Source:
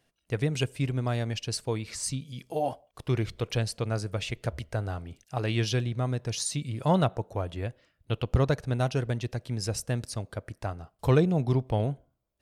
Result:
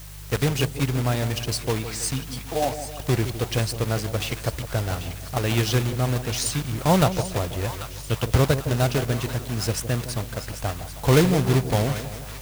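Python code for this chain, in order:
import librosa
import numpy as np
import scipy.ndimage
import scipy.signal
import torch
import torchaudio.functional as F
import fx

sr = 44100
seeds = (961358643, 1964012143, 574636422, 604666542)

p1 = fx.block_float(x, sr, bits=3)
p2 = fx.dmg_buzz(p1, sr, base_hz=50.0, harmonics=3, level_db=-46.0, tilt_db=-4, odd_only=False)
p3 = fx.quant_dither(p2, sr, seeds[0], bits=6, dither='triangular')
p4 = p2 + (p3 * 10.0 ** (-11.5 / 20.0))
p5 = fx.echo_split(p4, sr, split_hz=910.0, low_ms=161, high_ms=790, feedback_pct=52, wet_db=-11.0)
y = p5 * 10.0 ** (2.5 / 20.0)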